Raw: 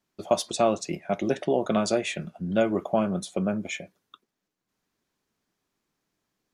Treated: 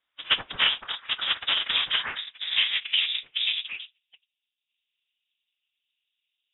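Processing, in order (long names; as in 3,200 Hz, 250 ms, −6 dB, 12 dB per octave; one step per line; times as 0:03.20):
sub-harmonics by changed cycles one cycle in 2, inverted
random phases in short frames
phase-vocoder pitch shift with formants kept −5 semitones
low-pass filter sweep 2,400 Hz → 980 Hz, 0:01.73–0:04.11
voice inversion scrambler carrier 3,700 Hz
level −1.5 dB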